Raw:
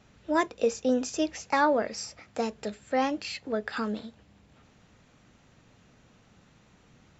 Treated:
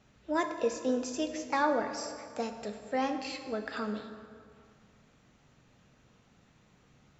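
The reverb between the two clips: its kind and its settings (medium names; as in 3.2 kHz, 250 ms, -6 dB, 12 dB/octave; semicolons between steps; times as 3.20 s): plate-style reverb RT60 2.1 s, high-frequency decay 0.6×, DRR 6 dB; trim -5 dB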